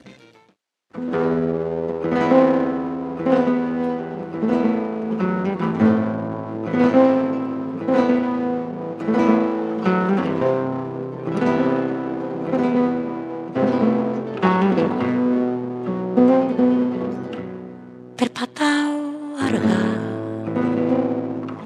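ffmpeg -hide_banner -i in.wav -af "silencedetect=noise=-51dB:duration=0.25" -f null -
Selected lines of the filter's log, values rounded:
silence_start: 0.51
silence_end: 0.91 | silence_duration: 0.40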